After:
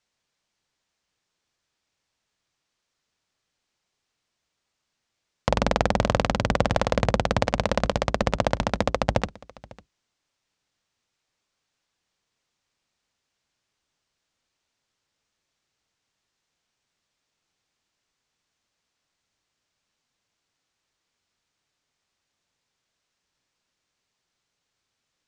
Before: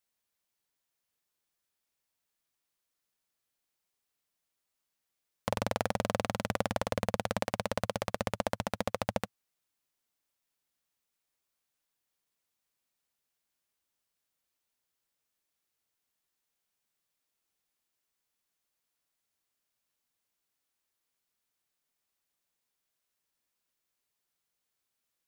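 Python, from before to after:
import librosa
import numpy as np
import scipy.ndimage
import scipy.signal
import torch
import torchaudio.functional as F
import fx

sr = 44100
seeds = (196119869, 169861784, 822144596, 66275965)

p1 = fx.octave_divider(x, sr, octaves=1, level_db=-1.0)
p2 = scipy.signal.sosfilt(scipy.signal.butter(4, 6900.0, 'lowpass', fs=sr, output='sos'), p1)
p3 = p2 + fx.echo_single(p2, sr, ms=550, db=-22.5, dry=0)
y = p3 * 10.0 ** (9.0 / 20.0)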